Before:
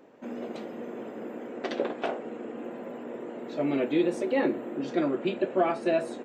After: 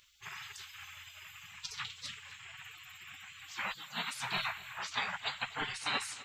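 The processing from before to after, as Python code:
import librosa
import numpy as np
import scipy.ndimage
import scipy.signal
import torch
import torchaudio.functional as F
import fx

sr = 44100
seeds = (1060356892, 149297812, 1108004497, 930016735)

y = fx.highpass(x, sr, hz=fx.line((3.72, 890.0), (4.19, 330.0)), slope=12, at=(3.72, 4.19), fade=0.02)
y = fx.spec_gate(y, sr, threshold_db=-30, keep='weak')
y = y + 10.0 ** (-19.0 / 20.0) * np.pad(y, (int(253 * sr / 1000.0), 0))[:len(y)]
y = F.gain(torch.from_numpy(y), 13.0).numpy()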